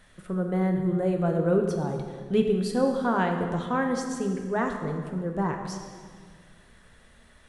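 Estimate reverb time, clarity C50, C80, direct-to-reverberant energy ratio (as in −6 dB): 1.8 s, 5.0 dB, 6.5 dB, 3.0 dB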